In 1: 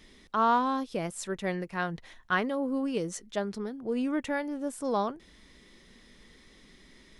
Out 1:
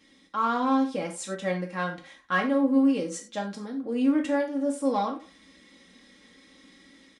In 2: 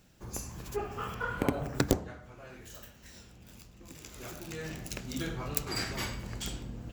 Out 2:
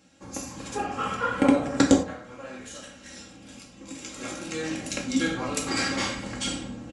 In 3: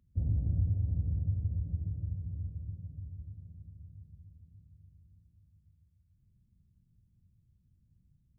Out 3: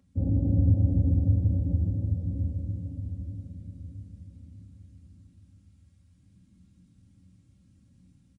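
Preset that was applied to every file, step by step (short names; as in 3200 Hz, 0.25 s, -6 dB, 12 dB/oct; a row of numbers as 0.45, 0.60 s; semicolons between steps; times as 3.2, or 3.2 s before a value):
HPF 110 Hz 12 dB/oct; comb 3.7 ms, depth 58%; AGC gain up to 4.5 dB; in parallel at -6 dB: hard clip -16.5 dBFS; on the sum: speakerphone echo 0.17 s, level -25 dB; non-linear reverb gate 0.13 s falling, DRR 1 dB; downsampling 22050 Hz; match loudness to -27 LUFS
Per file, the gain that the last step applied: -9.5, -2.0, +6.0 dB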